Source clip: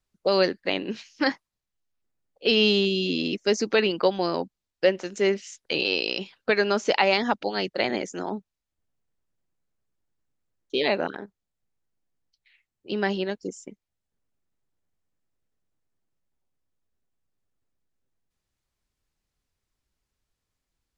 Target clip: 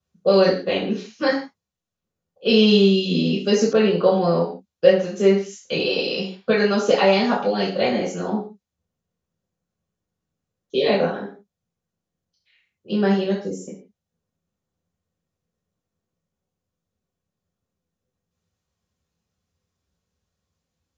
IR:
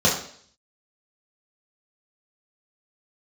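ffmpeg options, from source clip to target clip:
-filter_complex "[1:a]atrim=start_sample=2205,afade=t=out:st=0.23:d=0.01,atrim=end_sample=10584[s0];[0:a][s0]afir=irnorm=-1:irlink=0,asettb=1/sr,asplit=3[s1][s2][s3];[s1]atrim=end=3.734[s4];[s2]atrim=start=3.73:end=5.99,asetpts=PTS-STARTPTS,afade=t=in:d=0.004:c=qsin,afade=t=out:st=2.256:d=0.004:c=qsin,adynamicequalizer=threshold=0.1:dfrequency=2100:dqfactor=0.7:tfrequency=2100:tqfactor=0.7:attack=5:release=100:ratio=0.375:range=2.5:mode=cutabove:tftype=highshelf[s5];[s3]atrim=start=5.986[s6];[s4][s5]acrossfade=d=0.004:c1=hsin:c2=qsin[s7];[s7][s6]acrossfade=d=0.004:c1=qsin:c2=hsin,volume=0.178"

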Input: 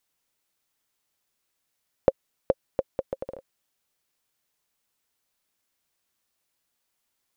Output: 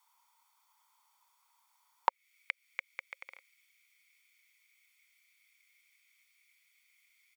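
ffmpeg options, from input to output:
-af "aecho=1:1:0.9:0.58,acompressor=threshold=0.0282:ratio=4,asetnsamples=n=441:p=0,asendcmd='2.09 highpass f 2200',highpass=f=930:t=q:w=8.2,volume=1.26"

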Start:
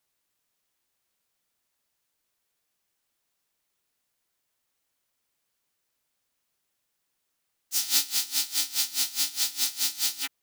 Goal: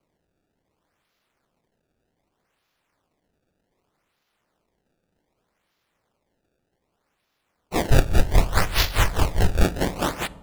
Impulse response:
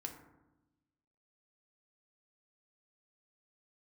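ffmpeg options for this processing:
-filter_complex "[0:a]acrusher=samples=24:mix=1:aa=0.000001:lfo=1:lforange=38.4:lforate=0.65,asplit=3[s0][s1][s2];[s0]afade=t=out:st=7.89:d=0.02[s3];[s1]asubboost=boost=9:cutoff=77,afade=t=in:st=7.89:d=0.02,afade=t=out:st=9.63:d=0.02[s4];[s2]afade=t=in:st=9.63:d=0.02[s5];[s3][s4][s5]amix=inputs=3:normalize=0,asplit=2[s6][s7];[1:a]atrim=start_sample=2205,asetrate=26460,aresample=44100[s8];[s7][s8]afir=irnorm=-1:irlink=0,volume=0.251[s9];[s6][s9]amix=inputs=2:normalize=0,volume=1.33"

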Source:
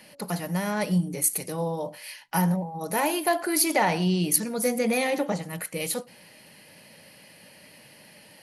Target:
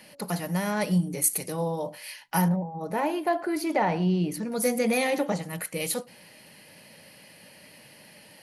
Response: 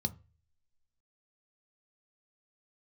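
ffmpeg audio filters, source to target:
-filter_complex "[0:a]asettb=1/sr,asplit=3[s0][s1][s2];[s0]atrim=end=2.484[s3];[s1]atrim=start=2.48:end=4.52,asetpts=PTS-STARTPTS,afade=t=in:d=0.004:c=qsin,afade=t=out:st=2.036:d=0.004:c=qsin,lowpass=f=1200:p=1[s4];[s2]atrim=start=4.516[s5];[s3][s4]acrossfade=d=0.004:c1=hsin:c2=qsin[s6];[s6][s5]acrossfade=d=0.004:c1=qsin:c2=hsin"

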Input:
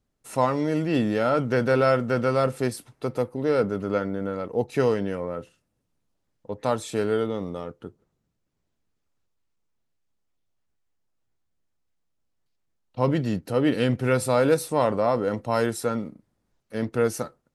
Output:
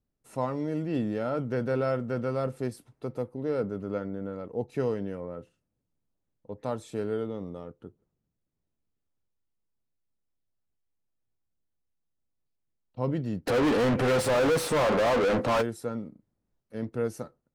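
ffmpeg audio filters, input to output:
-filter_complex "[0:a]tiltshelf=f=820:g=4,asplit=3[s0][s1][s2];[s0]afade=t=out:st=13.46:d=0.02[s3];[s1]asplit=2[s4][s5];[s5]highpass=f=720:p=1,volume=89.1,asoftclip=type=tanh:threshold=0.376[s6];[s4][s6]amix=inputs=2:normalize=0,lowpass=f=2600:p=1,volume=0.501,afade=t=in:st=13.46:d=0.02,afade=t=out:st=15.61:d=0.02[s7];[s2]afade=t=in:st=15.61:d=0.02[s8];[s3][s7][s8]amix=inputs=3:normalize=0,volume=0.355"

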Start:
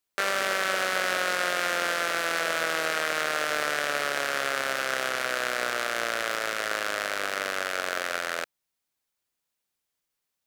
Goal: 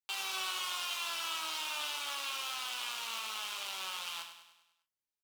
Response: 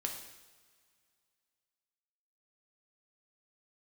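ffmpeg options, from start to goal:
-filter_complex "[0:a]aecho=1:1:200|400|600|800|1000|1200:0.335|0.171|0.0871|0.0444|0.0227|0.0116[s0];[1:a]atrim=start_sample=2205,afade=t=out:st=0.26:d=0.01,atrim=end_sample=11907,asetrate=66150,aresample=44100[s1];[s0][s1]afir=irnorm=-1:irlink=0,asetrate=88200,aresample=44100,volume=0.398"

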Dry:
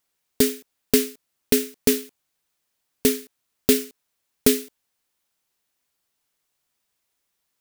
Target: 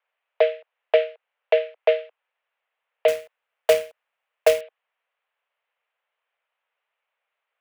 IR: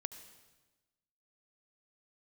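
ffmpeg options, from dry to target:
-filter_complex "[0:a]highpass=f=270:t=q:w=0.5412,highpass=f=270:t=q:w=1.307,lowpass=f=2700:t=q:w=0.5176,lowpass=f=2700:t=q:w=0.7071,lowpass=f=2700:t=q:w=1.932,afreqshift=210,asettb=1/sr,asplit=3[s0][s1][s2];[s0]atrim=end=3.084[s3];[s1]atrim=start=3.08:end=4.61,asetpts=PTS-STARTPTS,afade=t=in:d=0.004:c=qsin,afade=t=out:st=1.526:d=0.004:c=qsin,acrusher=bits=3:mode=log:mix=0:aa=0.000001[s4];[s2]atrim=start=4.606[s5];[s3][s4]acrossfade=d=0.004:c1=hsin:c2=qsin[s6];[s6][s5]acrossfade=d=0.004:c1=qsin:c2=hsin,volume=1.5"

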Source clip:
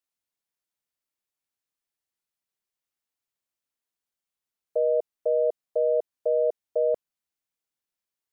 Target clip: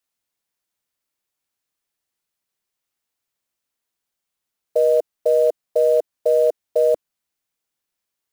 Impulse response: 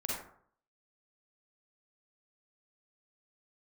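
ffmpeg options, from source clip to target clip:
-af "adynamicequalizer=threshold=0.00447:dfrequency=310:dqfactor=4.4:tfrequency=310:tqfactor=4.4:attack=5:release=100:ratio=0.375:range=2.5:mode=cutabove:tftype=bell,acrusher=bits=7:mode=log:mix=0:aa=0.000001,volume=2.24"

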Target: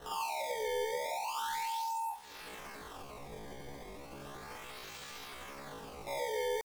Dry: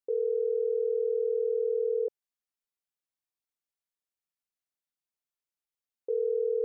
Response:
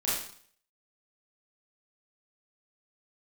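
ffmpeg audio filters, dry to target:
-filter_complex "[0:a]aeval=exprs='val(0)+0.5*0.00447*sgn(val(0))':c=same,acompressor=threshold=0.00708:ratio=12,acrusher=samples=35:mix=1:aa=0.000001:lfo=1:lforange=56:lforate=0.35,asoftclip=type=tanh:threshold=0.0133[s0];[1:a]atrim=start_sample=2205[s1];[s0][s1]afir=irnorm=-1:irlink=0,asetrate=83250,aresample=44100,atempo=0.529732,volume=1.19"

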